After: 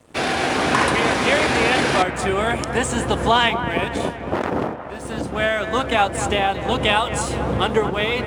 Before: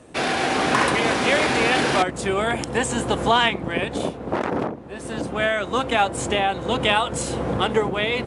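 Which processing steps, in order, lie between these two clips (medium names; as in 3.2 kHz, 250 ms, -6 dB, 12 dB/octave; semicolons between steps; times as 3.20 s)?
peaking EQ 78 Hz +6.5 dB 0.81 oct; crossover distortion -47.5 dBFS; feedback echo behind a band-pass 230 ms, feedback 59%, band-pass 1.1 kHz, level -9 dB; trim +1.5 dB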